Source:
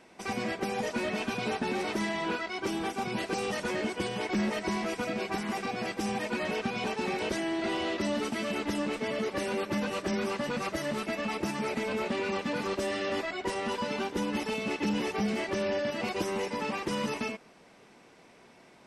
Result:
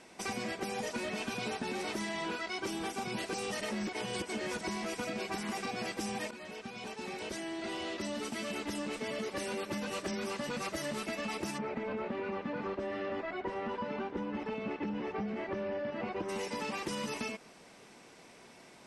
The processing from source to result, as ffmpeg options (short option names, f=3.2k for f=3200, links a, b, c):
-filter_complex "[0:a]asplit=3[a][b][c];[a]afade=t=out:st=11.57:d=0.02[d];[b]lowpass=1.7k,afade=t=in:st=11.57:d=0.02,afade=t=out:st=16.28:d=0.02[e];[c]afade=t=in:st=16.28:d=0.02[f];[d][e][f]amix=inputs=3:normalize=0,asplit=4[g][h][i][j];[g]atrim=end=3.612[k];[h]atrim=start=3.608:end=4.612,asetpts=PTS-STARTPTS,areverse[l];[i]atrim=start=4.608:end=6.31,asetpts=PTS-STARTPTS,afade=t=out:st=1.698:d=0.004:c=hsin:silence=0.158489[m];[j]atrim=start=6.31,asetpts=PTS-STARTPTS,afade=t=in:d=4.06:silence=0.158489[n];[k][l]acrossfade=d=0.004:c1=hsin:c2=hsin[o];[m][n]concat=n=2:v=0:a=1[p];[o][p]acrossfade=d=0.004:c1=hsin:c2=hsin,lowpass=11k,highshelf=f=5.5k:g=10.5,acompressor=threshold=-34dB:ratio=6"